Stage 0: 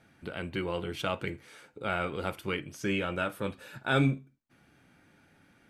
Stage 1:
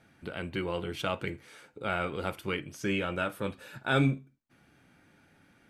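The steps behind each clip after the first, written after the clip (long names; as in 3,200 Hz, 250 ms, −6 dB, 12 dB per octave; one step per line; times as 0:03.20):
no processing that can be heard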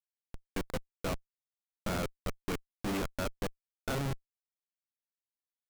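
output level in coarse steps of 16 dB
comparator with hysteresis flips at −33 dBFS
level +6.5 dB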